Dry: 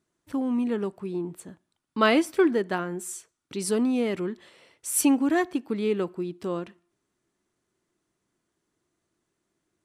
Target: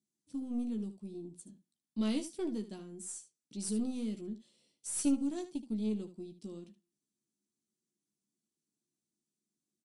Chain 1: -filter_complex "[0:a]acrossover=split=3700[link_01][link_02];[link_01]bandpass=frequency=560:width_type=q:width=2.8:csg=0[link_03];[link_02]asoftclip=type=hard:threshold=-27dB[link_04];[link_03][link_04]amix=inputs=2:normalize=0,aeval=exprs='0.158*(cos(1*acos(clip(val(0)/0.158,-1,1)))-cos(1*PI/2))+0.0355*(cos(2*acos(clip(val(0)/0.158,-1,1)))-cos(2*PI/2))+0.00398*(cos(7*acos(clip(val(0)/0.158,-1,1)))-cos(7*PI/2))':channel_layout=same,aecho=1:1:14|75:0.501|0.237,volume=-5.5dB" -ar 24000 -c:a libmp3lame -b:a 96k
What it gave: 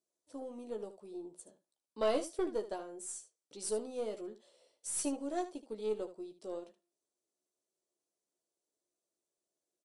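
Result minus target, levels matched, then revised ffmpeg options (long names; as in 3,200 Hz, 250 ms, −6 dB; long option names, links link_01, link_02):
500 Hz band +9.5 dB
-filter_complex "[0:a]acrossover=split=3700[link_01][link_02];[link_01]bandpass=frequency=210:width_type=q:width=2.8:csg=0[link_03];[link_02]asoftclip=type=hard:threshold=-27dB[link_04];[link_03][link_04]amix=inputs=2:normalize=0,aeval=exprs='0.158*(cos(1*acos(clip(val(0)/0.158,-1,1)))-cos(1*PI/2))+0.0355*(cos(2*acos(clip(val(0)/0.158,-1,1)))-cos(2*PI/2))+0.00398*(cos(7*acos(clip(val(0)/0.158,-1,1)))-cos(7*PI/2))':channel_layout=same,aecho=1:1:14|75:0.501|0.237,volume=-5.5dB" -ar 24000 -c:a libmp3lame -b:a 96k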